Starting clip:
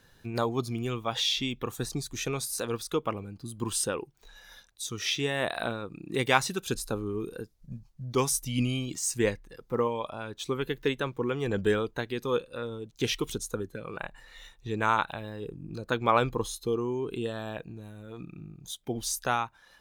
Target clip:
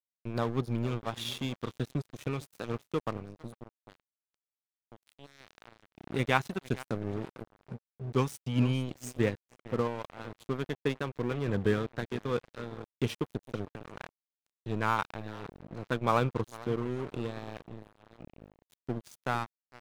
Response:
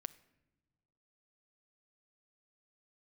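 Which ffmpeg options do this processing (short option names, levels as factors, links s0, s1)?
-filter_complex "[0:a]asplit=2[s0][s1];[s1]adelay=454,lowpass=f=3600:p=1,volume=0.2,asplit=2[s2][s3];[s3]adelay=454,lowpass=f=3600:p=1,volume=0.45,asplit=2[s4][s5];[s5]adelay=454,lowpass=f=3600:p=1,volume=0.45,asplit=2[s6][s7];[s7]adelay=454,lowpass=f=3600:p=1,volume=0.45[s8];[s0][s2][s4][s6][s8]amix=inputs=5:normalize=0,asplit=3[s9][s10][s11];[s9]afade=t=out:st=3.53:d=0.02[s12];[s10]acompressor=threshold=0.00447:ratio=2,afade=t=in:st=3.53:d=0.02,afade=t=out:st=5.96:d=0.02[s13];[s11]afade=t=in:st=5.96:d=0.02[s14];[s12][s13][s14]amix=inputs=3:normalize=0,highpass=f=74:w=0.5412,highpass=f=74:w=1.3066,bass=f=250:g=8,treble=f=4000:g=-8,aeval=exprs='sgn(val(0))*max(abs(val(0))-0.02,0)':c=same,volume=0.75"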